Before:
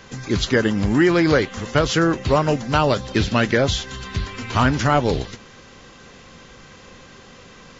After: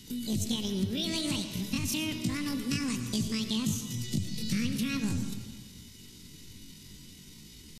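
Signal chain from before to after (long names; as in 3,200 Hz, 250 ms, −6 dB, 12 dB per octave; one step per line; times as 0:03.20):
drawn EQ curve 120 Hz 0 dB, 370 Hz −30 dB, 2,200 Hz −3 dB, 4,800 Hz −5 dB
downward compressor 5 to 1, threshold −28 dBFS, peak gain reduction 10 dB
pitch shifter +11 semitones
convolution reverb RT60 1.5 s, pre-delay 48 ms, DRR 7 dB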